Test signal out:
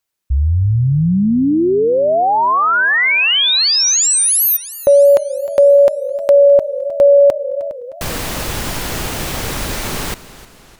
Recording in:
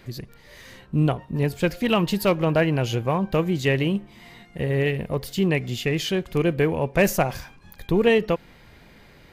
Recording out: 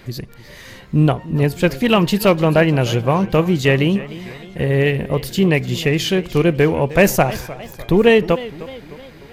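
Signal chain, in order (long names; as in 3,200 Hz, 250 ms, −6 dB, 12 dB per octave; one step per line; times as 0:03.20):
feedback echo with a swinging delay time 304 ms, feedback 52%, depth 148 cents, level −17 dB
level +6.5 dB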